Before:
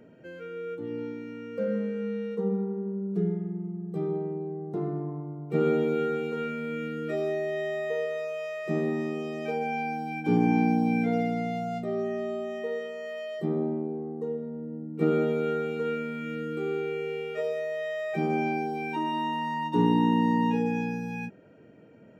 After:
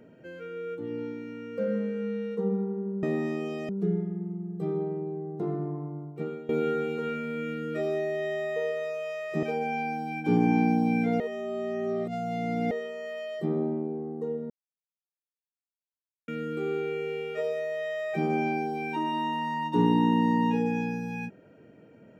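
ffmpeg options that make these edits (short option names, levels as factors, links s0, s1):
-filter_complex "[0:a]asplit=9[s0][s1][s2][s3][s4][s5][s6][s7][s8];[s0]atrim=end=3.032[s9];[s1]atrim=start=8.768:end=9.432[s10];[s2]atrim=start=3.028:end=5.83,asetpts=PTS-STARTPTS,afade=t=out:st=2.332:d=0.47:c=qua:silence=0.11885[s11];[s3]atrim=start=5.83:end=8.772,asetpts=PTS-STARTPTS,afade=t=in:d=0.004:c=hsin:silence=0.11885[s12];[s4]atrim=start=9.428:end=11.202[s13];[s5]atrim=start=11.198:end=12.712,asetpts=PTS-STARTPTS,areverse[s14];[s6]atrim=start=12.708:end=14.5,asetpts=PTS-STARTPTS,afade=t=out:st=1.788:d=0.004:c=hsin[s15];[s7]atrim=start=14.5:end=16.28,asetpts=PTS-STARTPTS,volume=0[s16];[s8]atrim=start=16.28,asetpts=PTS-STARTPTS,afade=t=in:d=0.004:c=hsin[s17];[s9][s10]acrossfade=d=0.004:c1=hsin:c2=hsin[s18];[s11][s12]concat=n=2:v=0:a=1[s19];[s18][s19]acrossfade=d=0.004:c1=hsin:c2=hsin[s20];[s20][s13]acrossfade=d=0.004:c1=hsin:c2=hsin[s21];[s21][s14]acrossfade=d=0.004:c1=hsin:c2=hsin[s22];[s15][s16][s17]concat=n=3:v=0:a=1[s23];[s22][s23]acrossfade=d=0.004:c1=hsin:c2=hsin"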